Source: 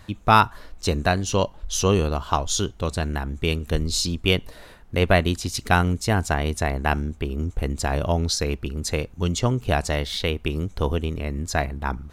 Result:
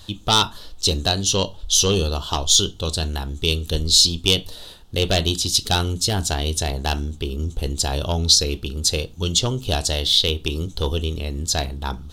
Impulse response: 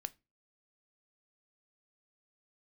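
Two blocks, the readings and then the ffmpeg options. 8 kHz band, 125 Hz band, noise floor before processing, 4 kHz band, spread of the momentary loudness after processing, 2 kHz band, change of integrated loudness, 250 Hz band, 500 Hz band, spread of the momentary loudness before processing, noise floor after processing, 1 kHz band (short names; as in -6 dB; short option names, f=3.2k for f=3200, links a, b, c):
+9.5 dB, 0.0 dB, -47 dBFS, +11.0 dB, 11 LU, -4.0 dB, +3.5 dB, -1.5 dB, -1.0 dB, 8 LU, -42 dBFS, -4.0 dB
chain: -filter_complex "[1:a]atrim=start_sample=2205[a];[0:a][a]afir=irnorm=-1:irlink=0,aeval=exprs='0.631*(cos(1*acos(clip(val(0)/0.631,-1,1)))-cos(1*PI/2))+0.251*(cos(5*acos(clip(val(0)/0.631,-1,1)))-cos(5*PI/2))':c=same,highshelf=f=2.7k:t=q:w=3:g=8,volume=-6.5dB"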